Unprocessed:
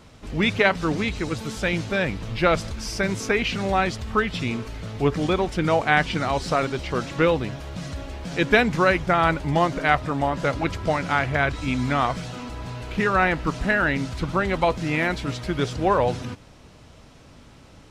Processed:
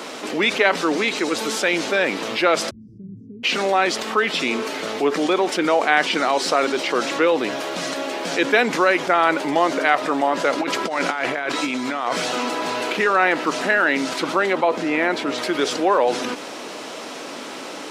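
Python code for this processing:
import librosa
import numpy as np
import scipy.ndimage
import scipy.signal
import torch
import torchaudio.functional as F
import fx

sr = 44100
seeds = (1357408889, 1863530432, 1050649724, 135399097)

y = fx.cheby2_lowpass(x, sr, hz=710.0, order=4, stop_db=80, at=(2.69, 3.43), fade=0.02)
y = fx.over_compress(y, sr, threshold_db=-27.0, ratio=-0.5, at=(10.58, 12.93))
y = fx.high_shelf(y, sr, hz=2600.0, db=-10.0, at=(14.53, 15.38))
y = scipy.signal.sosfilt(scipy.signal.butter(4, 290.0, 'highpass', fs=sr, output='sos'), y)
y = fx.env_flatten(y, sr, amount_pct=50)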